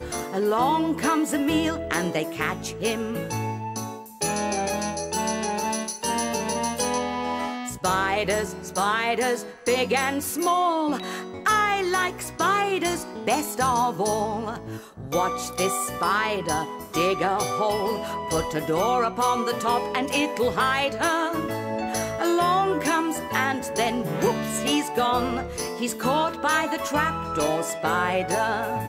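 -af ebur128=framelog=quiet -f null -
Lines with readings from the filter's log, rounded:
Integrated loudness:
  I:         -24.6 LUFS
  Threshold: -34.7 LUFS
Loudness range:
  LRA:         3.0 LU
  Threshold: -44.8 LUFS
  LRA low:   -26.6 LUFS
  LRA high:  -23.6 LUFS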